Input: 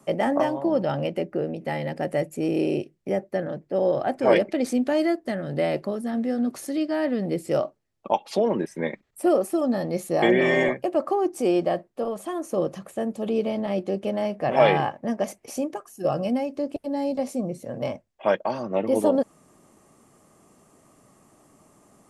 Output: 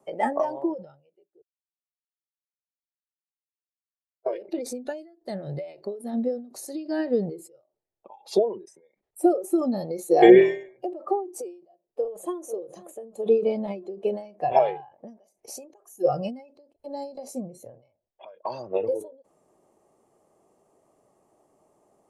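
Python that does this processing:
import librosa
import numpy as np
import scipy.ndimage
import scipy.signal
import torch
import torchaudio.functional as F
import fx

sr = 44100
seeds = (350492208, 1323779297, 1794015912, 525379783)

y = fx.echo_throw(x, sr, start_s=11.74, length_s=0.72, ms=490, feedback_pct=60, wet_db=-14.0)
y = fx.edit(y, sr, fx.silence(start_s=1.42, length_s=2.84), tone=tone)
y = fx.noise_reduce_blind(y, sr, reduce_db=14)
y = fx.band_shelf(y, sr, hz=570.0, db=10.5, octaves=1.7)
y = fx.end_taper(y, sr, db_per_s=120.0)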